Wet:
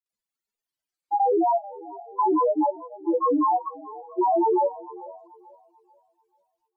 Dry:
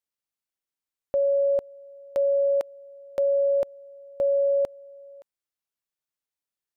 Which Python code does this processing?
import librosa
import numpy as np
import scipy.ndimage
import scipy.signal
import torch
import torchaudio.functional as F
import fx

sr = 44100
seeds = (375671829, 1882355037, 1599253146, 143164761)

y = fx.spec_expand(x, sr, power=3.9)
y = fx.granulator(y, sr, seeds[0], grain_ms=100.0, per_s=20.0, spray_ms=100.0, spread_st=12)
y = fx.echo_thinned(y, sr, ms=438, feedback_pct=40, hz=400.0, wet_db=-18.0)
y = y * 10.0 ** (3.5 / 20.0)